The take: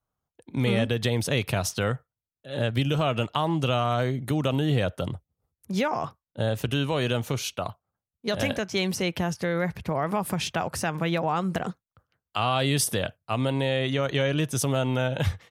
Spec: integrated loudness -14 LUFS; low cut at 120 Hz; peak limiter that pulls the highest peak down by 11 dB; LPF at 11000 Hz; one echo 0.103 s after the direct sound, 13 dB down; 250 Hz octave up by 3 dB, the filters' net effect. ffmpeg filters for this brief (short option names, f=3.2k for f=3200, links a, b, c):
-af "highpass=120,lowpass=11k,equalizer=f=250:t=o:g=4.5,alimiter=limit=-21dB:level=0:latency=1,aecho=1:1:103:0.224,volume=17.5dB"